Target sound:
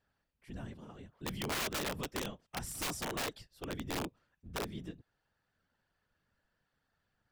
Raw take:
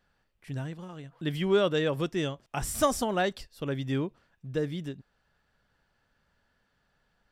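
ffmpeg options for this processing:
-af "afftfilt=real='hypot(re,im)*cos(2*PI*random(0))':imag='hypot(re,im)*sin(2*PI*random(1))':win_size=512:overlap=0.75,aeval=exprs='(mod(25.1*val(0)+1,2)-1)/25.1':c=same,volume=-2.5dB"

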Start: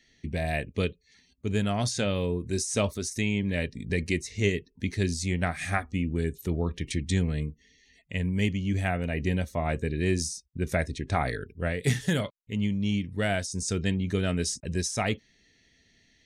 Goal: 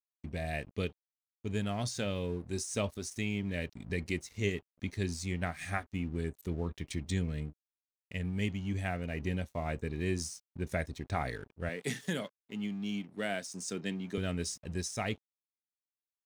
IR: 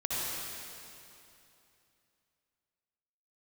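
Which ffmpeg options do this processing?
-filter_complex "[0:a]aeval=exprs='sgn(val(0))*max(abs(val(0))-0.00398,0)':c=same,asettb=1/sr,asplit=3[a][b][c];[a]atrim=end=11.694[d];[b]atrim=start=11.69:end=14.18,asetpts=PTS-STARTPTS,afade=t=in:d=0.004:c=qsin,afade=t=out:st=2.486:d=0.004:c=qsin,highpass=f=170:w=0.5412,highpass=f=170:w=1.3066[e];[c]atrim=start=14.176[f];[d][e]acrossfade=d=0.004:c1=hsin:c2=qsin[g];[g][f]acrossfade=d=0.004:c1=qsin:c2=hsin,volume=-6.5dB"

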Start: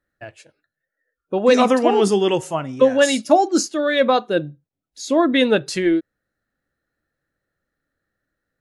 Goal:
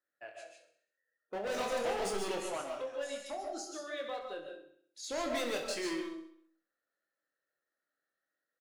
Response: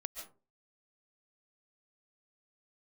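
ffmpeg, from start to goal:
-filter_complex "[0:a]highpass=440,asettb=1/sr,asplit=3[a][b][c];[a]atrim=end=2.614[d];[b]atrim=start=2.61:end=5.03,asetpts=PTS-STARTPTS,afade=t=in:d=0.004:c=qsin,afade=t=out:st=2.416:d=0.004:c=qsin,acompressor=threshold=-35dB:ratio=2.5[e];[c]atrim=start=5.026[f];[d][e]acrossfade=d=0.004:c1=hsin:c2=qsin[g];[g][f]acrossfade=d=0.004:c1=qsin:c2=hsin,volume=23.5dB,asoftclip=hard,volume=-23.5dB,asplit=2[h][i];[i]adelay=25,volume=-5.5dB[j];[h][j]amix=inputs=2:normalize=0,aecho=1:1:65|130|195|260|325|390:0.282|0.147|0.0762|0.0396|0.0206|0.0107[k];[1:a]atrim=start_sample=2205[l];[k][l]afir=irnorm=-1:irlink=0,volume=-8.5dB"

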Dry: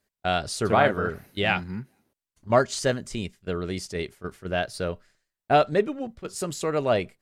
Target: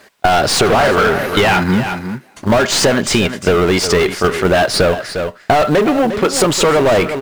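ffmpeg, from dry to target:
-filter_complex "[0:a]aeval=exprs='if(lt(val(0),0),0.708*val(0),val(0))':c=same,asplit=2[a][b];[b]highpass=f=720:p=1,volume=34dB,asoftclip=type=tanh:threshold=-7.5dB[c];[a][c]amix=inputs=2:normalize=0,lowpass=f=2k:p=1,volume=-6dB,asplit=2[d][e];[e]acrusher=bits=3:mode=log:mix=0:aa=0.000001,volume=-8dB[f];[d][f]amix=inputs=2:normalize=0,aecho=1:1:353:0.2,acompressor=threshold=-19dB:ratio=6,volume=8.5dB"

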